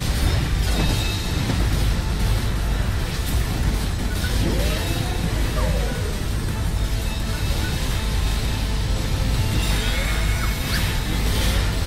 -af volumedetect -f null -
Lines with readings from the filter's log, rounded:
mean_volume: -20.9 dB
max_volume: -9.2 dB